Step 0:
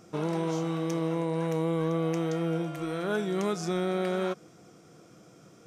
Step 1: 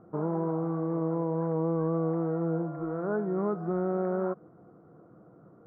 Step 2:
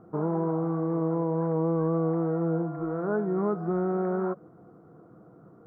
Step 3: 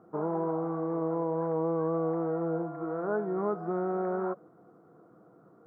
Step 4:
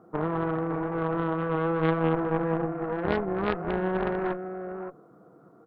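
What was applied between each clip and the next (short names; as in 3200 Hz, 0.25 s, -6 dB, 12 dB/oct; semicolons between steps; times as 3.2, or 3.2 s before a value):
inverse Chebyshev low-pass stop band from 2600 Hz, stop band 40 dB
notch 570 Hz, Q 12; gain +2.5 dB
HPF 310 Hz 6 dB/oct; dynamic EQ 680 Hz, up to +3 dB, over -40 dBFS, Q 1; gain -2 dB
echo 0.565 s -7.5 dB; added harmonics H 2 -8 dB, 3 -8 dB, 5 -17 dB, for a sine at -18 dBFS; gain +8.5 dB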